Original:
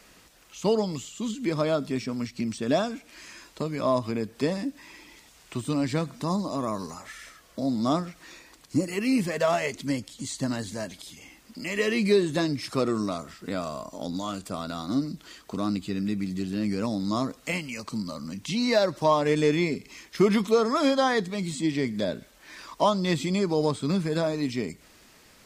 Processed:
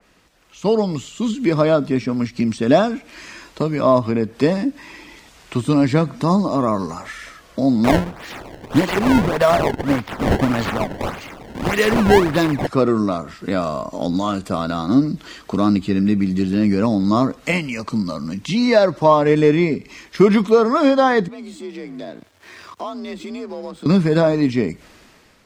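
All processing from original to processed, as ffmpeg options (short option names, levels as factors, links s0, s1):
-filter_complex "[0:a]asettb=1/sr,asplit=3[s0][s1][s2];[s0]atrim=end=7.844[s3];[s1]atrim=start=7.84:end=12.67,asetpts=PTS-STARTPTS,afade=t=in:d=0.004:c=qsin,afade=t=out:st=4.826:d=0.004:c=qsin,aemphasis=mode=production:type=75fm,acrusher=samples=21:mix=1:aa=0.000001:lfo=1:lforange=33.6:lforate=1.7[s4];[s2]atrim=start=12.666[s5];[s3][s4]acrossfade=d=0.004:c1=hsin:c2=qsin[s6];[s6][s5]acrossfade=d=0.004:c1=qsin:c2=hsin,asettb=1/sr,asplit=3[s7][s8][s9];[s7]atrim=end=21.284[s10];[s8]atrim=start=21.28:end=23.86,asetpts=PTS-STARTPTS,afade=t=in:d=0.004:c=qsin,afade=t=out:st=2.576:d=0.004:c=qsin,acompressor=threshold=0.00562:ratio=2.5:attack=3.2:release=140:knee=1:detection=peak,aeval=exprs='sgn(val(0))*max(abs(val(0))-0.00158,0)':c=same,afreqshift=49[s11];[s9]atrim=start=23.856[s12];[s10][s11]acrossfade=d=0.004:c1=hsin:c2=qsin[s13];[s13][s12]acrossfade=d=0.004:c1=qsin:c2=hsin,highshelf=f=5500:g=-10.5,dynaudnorm=f=200:g=7:m=3.98,adynamicequalizer=threshold=0.02:dfrequency=2400:dqfactor=0.7:tfrequency=2400:tqfactor=0.7:attack=5:release=100:ratio=0.375:range=3:mode=cutabove:tftype=highshelf"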